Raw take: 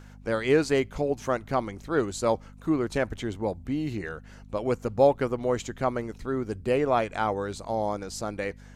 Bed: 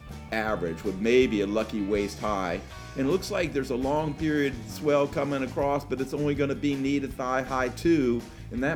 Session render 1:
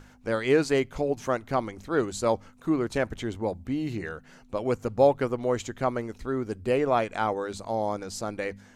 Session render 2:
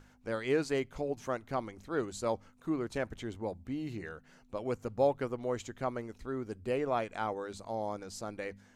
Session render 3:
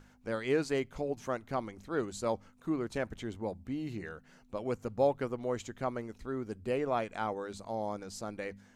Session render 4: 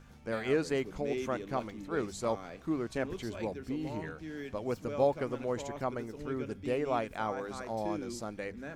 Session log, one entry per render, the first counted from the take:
de-hum 50 Hz, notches 4
trim -8 dB
peaking EQ 200 Hz +3 dB 0.4 oct
add bed -16.5 dB

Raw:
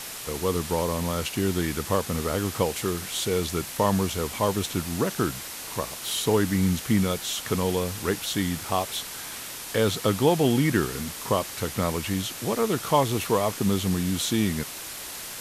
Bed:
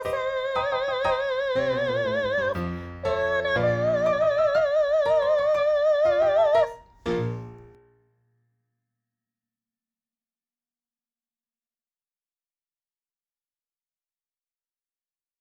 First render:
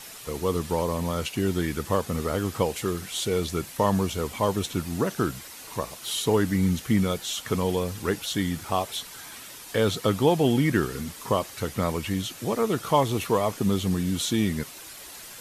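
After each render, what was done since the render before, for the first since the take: noise reduction 8 dB, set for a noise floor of -38 dBFS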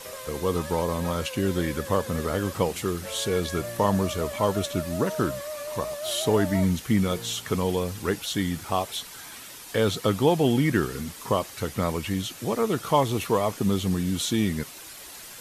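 add bed -13.5 dB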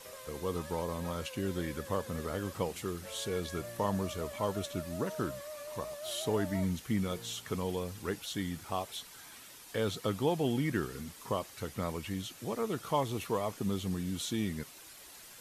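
trim -9.5 dB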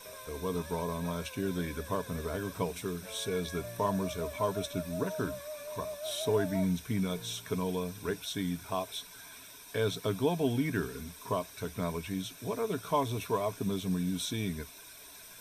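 rippled EQ curve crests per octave 1.6, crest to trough 10 dB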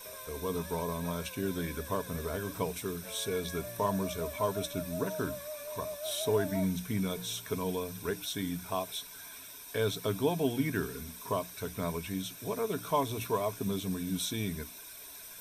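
treble shelf 12 kHz +10 dB; hum notches 60/120/180/240/300 Hz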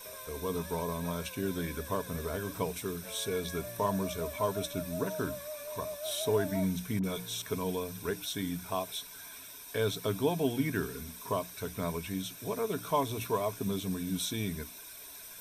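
6.99–7.42 s: phase dispersion highs, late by 46 ms, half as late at 1.2 kHz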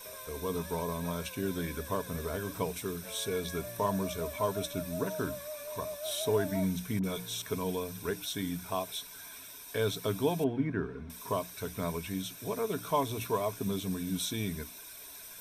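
10.44–11.10 s: low-pass 1.5 kHz

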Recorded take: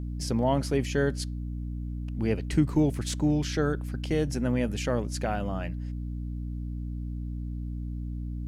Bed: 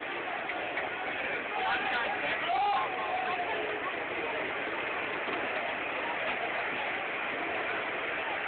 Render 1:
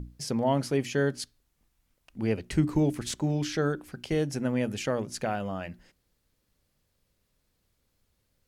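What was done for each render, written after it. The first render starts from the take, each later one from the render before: hum notches 60/120/180/240/300/360 Hz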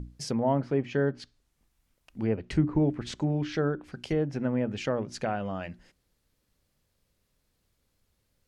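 low-pass that closes with the level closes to 1.5 kHz, closed at -23.5 dBFS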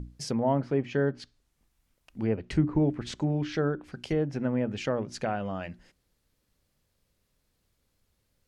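no audible change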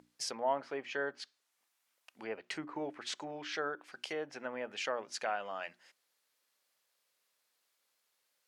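high-pass 800 Hz 12 dB/octave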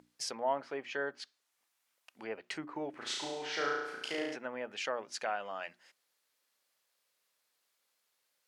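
2.90–4.36 s: flutter echo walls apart 6.1 m, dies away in 0.94 s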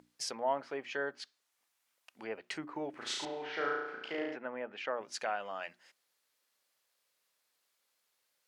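3.25–5.01 s: band-pass 130–2400 Hz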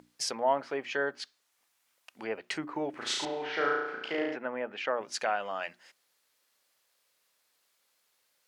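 trim +5.5 dB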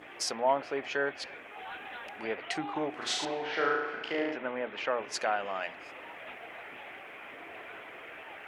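add bed -12.5 dB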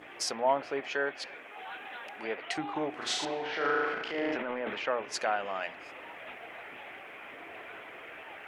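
0.80–2.58 s: high-pass 210 Hz 6 dB/octave; 3.44–4.78 s: transient shaper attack -6 dB, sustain +9 dB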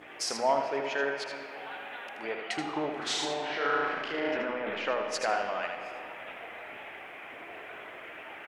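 delay 79 ms -6.5 dB; algorithmic reverb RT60 3.2 s, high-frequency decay 0.5×, pre-delay 45 ms, DRR 7.5 dB

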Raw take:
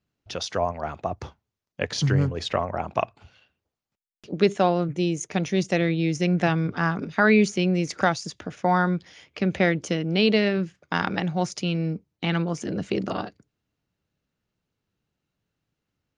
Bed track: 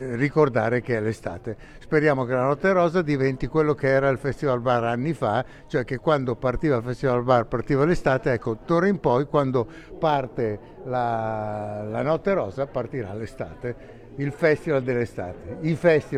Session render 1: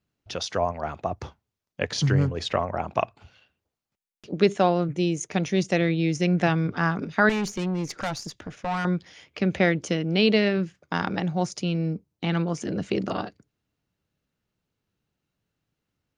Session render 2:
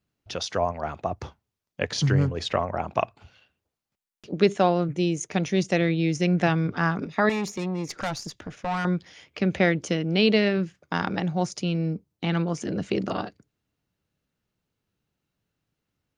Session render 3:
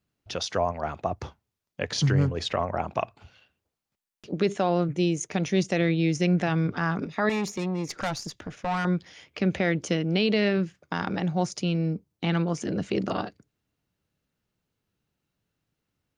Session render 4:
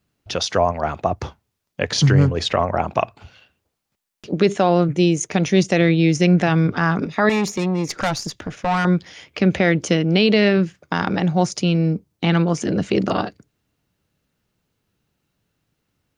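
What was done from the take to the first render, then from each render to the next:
7.29–8.85 s: valve stage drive 23 dB, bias 0.45; 10.78–12.37 s: peaking EQ 2.3 kHz -4 dB 2.1 oct
7.06–7.89 s: comb of notches 1.5 kHz
peak limiter -13 dBFS, peak gain reduction 6 dB
trim +8 dB

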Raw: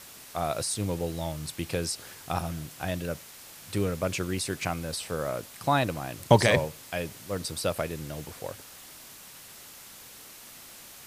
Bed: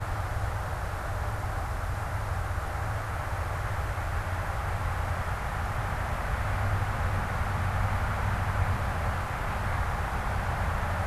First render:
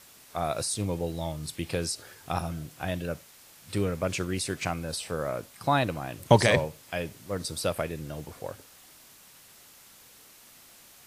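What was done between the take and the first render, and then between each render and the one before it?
noise print and reduce 6 dB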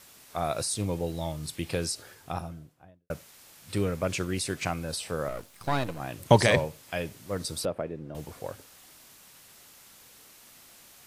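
1.91–3.10 s: studio fade out; 5.28–6.00 s: partial rectifier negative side -12 dB; 7.65–8.15 s: band-pass filter 350 Hz, Q 0.62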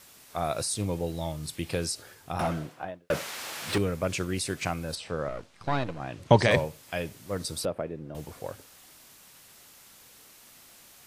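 2.39–3.78 s: overdrive pedal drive 30 dB, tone 2.4 kHz, clips at -16.5 dBFS; 4.95–6.51 s: distance through air 92 m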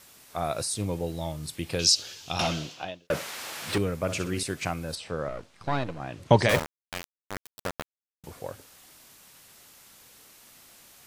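1.79–3.07 s: high-order bell 4.2 kHz +15.5 dB; 4.01–4.43 s: flutter echo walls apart 10.5 m, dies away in 0.38 s; 6.49–8.24 s: small samples zeroed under -23 dBFS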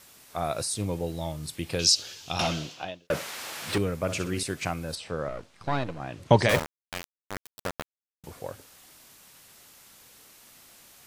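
no audible change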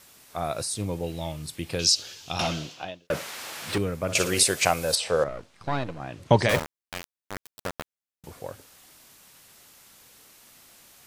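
1.03–1.43 s: peaking EQ 2.6 kHz +9 dB 0.61 oct; 4.15–5.24 s: FFT filter 310 Hz 0 dB, 500 Hz +12 dB, 1.3 kHz +7 dB, 7.6 kHz +14 dB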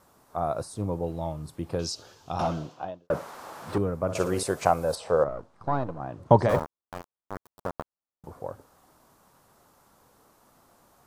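resonant high shelf 1.6 kHz -13 dB, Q 1.5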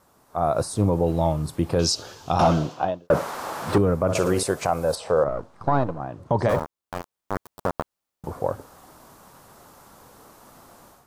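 level rider gain up to 11 dB; peak limiter -10 dBFS, peak gain reduction 8.5 dB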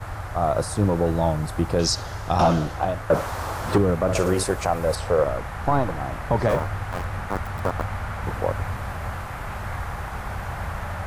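add bed -1 dB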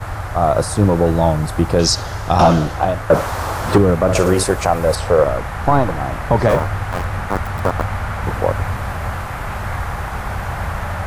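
trim +7 dB

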